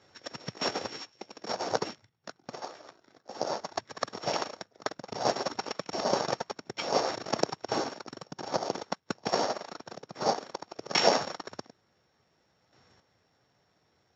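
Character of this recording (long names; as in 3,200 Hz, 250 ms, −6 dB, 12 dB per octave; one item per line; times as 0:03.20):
a buzz of ramps at a fixed pitch in blocks of 8 samples
chopped level 0.55 Hz, depth 60%, duty 15%
Speex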